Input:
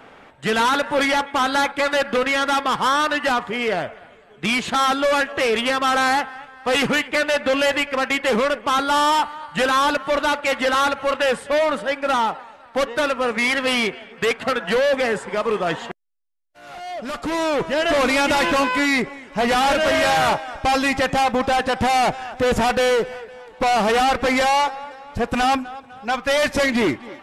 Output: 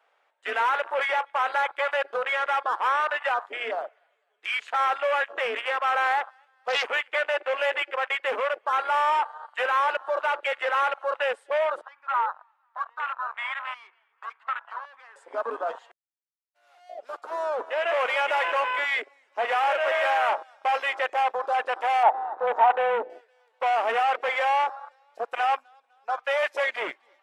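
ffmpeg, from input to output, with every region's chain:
-filter_complex "[0:a]asettb=1/sr,asplit=3[s0][s1][s2];[s0]atrim=end=11.814[s3];[s1]atrim=start=11.81:end=15.16,asetpts=PTS-STARTPTS,afade=t=in:d=0.004:c=qsin,afade=t=out:st=3.346:d=0.004:c=qsin,lowpass=f=1000:p=1,lowshelf=f=770:t=q:w=3:g=-10.5[s4];[s2]atrim=start=15.156[s5];[s3][s4]acrossfade=d=0.004:c1=hsin:c2=qsin[s6];[s6][s5]acrossfade=d=0.004:c1=qsin:c2=hsin,asettb=1/sr,asplit=3[s7][s8][s9];[s7]atrim=end=22.034[s10];[s8]atrim=start=22.03:end=23.1,asetpts=PTS-STARTPTS,afade=t=in:d=0.004:c=qsin,afade=t=out:st=1.066:d=0.004:c=qsin,lowpass=2100,equalizer=f=870:t=o:w=0.48:g=11.5[s11];[s9]atrim=start=23.096[s12];[s10][s11]acrossfade=d=0.004:c1=hsin:c2=qsin[s13];[s13][s12]acrossfade=d=0.004:c1=qsin:c2=hsin,highpass=f=530:w=0.5412,highpass=f=530:w=1.3066,afwtdn=0.0631,volume=0.596"

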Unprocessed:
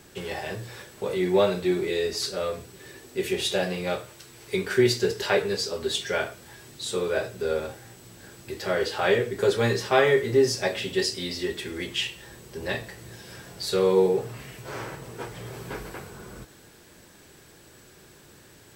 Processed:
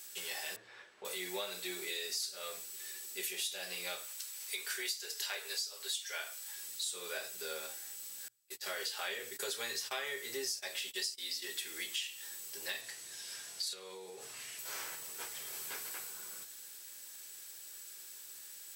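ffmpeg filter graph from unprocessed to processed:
-filter_complex "[0:a]asettb=1/sr,asplit=3[s0][s1][s2];[s0]atrim=end=0.564[s3];[s1]atrim=start=0.56:end=1.05,asetpts=PTS-STARTPTS,afade=t=in:d=0.004:c=qsin,afade=t=out:st=0.486:d=0.004:c=qsin,lowpass=1800,equalizer=f=130:t=o:w=0.76:g=-4.5[s4];[s2]atrim=start=1.046[s5];[s3][s4]acrossfade=d=0.004:c1=hsin:c2=qsin[s6];[s6][s5]acrossfade=d=0.004:c1=qsin:c2=hsin,asettb=1/sr,asplit=3[s7][s8][s9];[s7]atrim=end=4.074[s10];[s8]atrim=start=4.07:end=6.56,asetpts=PTS-STARTPTS,afade=t=in:d=0.004:c=qsin,afade=t=out:st=2.486:d=0.004:c=qsin,highpass=500,asoftclip=type=hard:threshold=0.188[s11];[s9]atrim=start=6.556[s12];[s10][s11]acrossfade=d=0.004:c1=hsin:c2=qsin[s13];[s13][s12]acrossfade=d=0.004:c1=qsin:c2=hsin,asettb=1/sr,asplit=3[s14][s15][s16];[s14]atrim=end=8.284[s17];[s15]atrim=start=8.28:end=11.48,asetpts=PTS-STARTPTS,afade=t=in:d=0.004:c=qsin,afade=t=out:st=3.196:d=0.004:c=qsin,bandreject=f=60:t=h:w=6,bandreject=f=120:t=h:w=6,bandreject=f=180:t=h:w=6,bandreject=f=240:t=h:w=6,agate=range=0.0282:threshold=0.0158:ratio=16:release=100:detection=peak[s18];[s16]atrim=start=11.476[s19];[s17][s18]acrossfade=d=0.004:c1=hsin:c2=qsin[s20];[s20][s19]acrossfade=d=0.004:c1=qsin:c2=hsin,asettb=1/sr,asplit=3[s21][s22][s23];[s21]atrim=end=12.814[s24];[s22]atrim=start=12.81:end=14.59,asetpts=PTS-STARTPTS,afade=t=in:d=0.004:c=qsin,afade=t=out:st=1.776:d=0.004:c=qsin,lowpass=9700,acompressor=threshold=0.0398:ratio=8:attack=3.2:release=140:knee=1:detection=peak[s25];[s23]atrim=start=14.586[s26];[s24][s25]acrossfade=d=0.004:c1=hsin:c2=qsin[s27];[s27][s26]acrossfade=d=0.004:c1=qsin:c2=hsin,aderivative,bandreject=f=60:t=h:w=6,bandreject=f=120:t=h:w=6,acompressor=threshold=0.00794:ratio=6,volume=2"

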